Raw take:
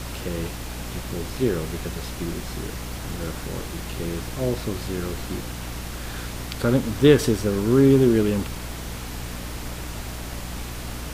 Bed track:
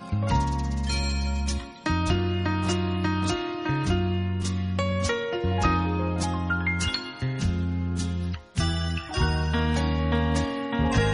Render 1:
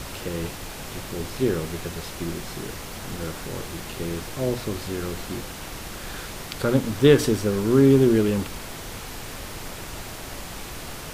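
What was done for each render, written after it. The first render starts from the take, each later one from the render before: hum notches 60/120/180/240/300 Hz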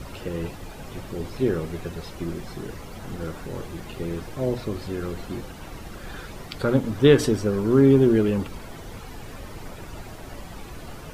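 noise reduction 11 dB, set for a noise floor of -37 dBFS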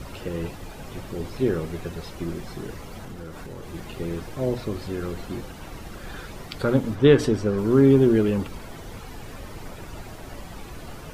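3.02–3.74 s: compression, threshold -33 dBFS; 6.94–7.57 s: treble shelf 5.1 kHz -> 8.5 kHz -10 dB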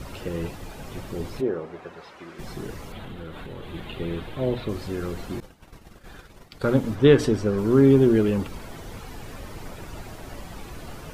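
1.40–2.38 s: band-pass filter 560 Hz -> 1.8 kHz, Q 0.78; 2.92–4.69 s: resonant high shelf 4.4 kHz -7.5 dB, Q 3; 5.40–6.79 s: expander -30 dBFS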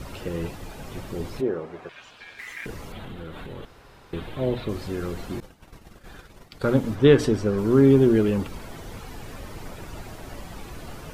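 1.89–2.66 s: ring modulator 2 kHz; 3.65–4.13 s: room tone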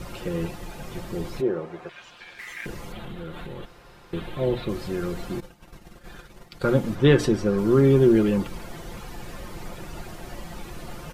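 comb 5.7 ms, depth 44%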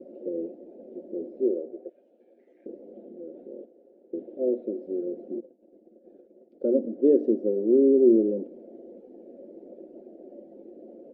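elliptic band-pass 240–590 Hz, stop band 40 dB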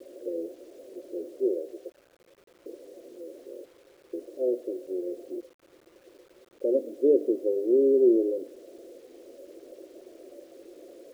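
static phaser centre 500 Hz, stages 4; word length cut 10-bit, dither none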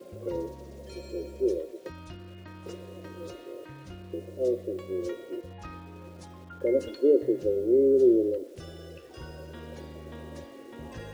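add bed track -20 dB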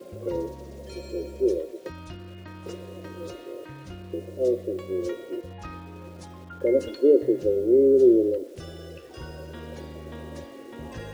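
trim +3.5 dB

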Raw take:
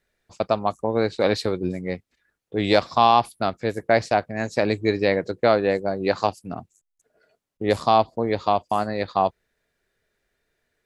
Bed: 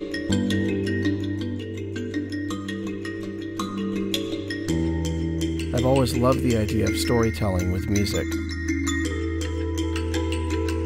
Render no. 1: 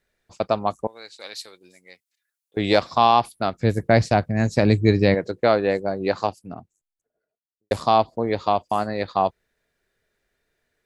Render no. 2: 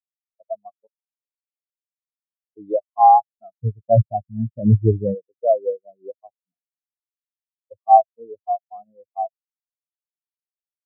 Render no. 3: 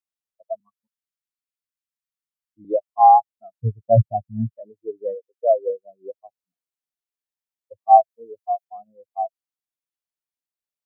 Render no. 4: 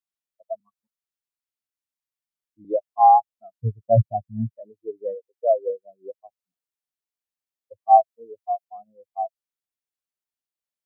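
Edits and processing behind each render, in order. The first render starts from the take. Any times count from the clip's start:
0.87–2.57 s: differentiator; 3.58–5.15 s: tone controls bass +13 dB, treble +3 dB; 5.79–7.71 s: studio fade out
waveshaping leveller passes 1; spectral contrast expander 4:1
0.60–2.65 s: inverse Chebyshev band-stop 380–760 Hz; 4.53–5.68 s: high-pass 720 Hz -> 300 Hz 24 dB/octave; 8.09–8.65 s: tilt EQ +1.5 dB/octave
trim -2 dB

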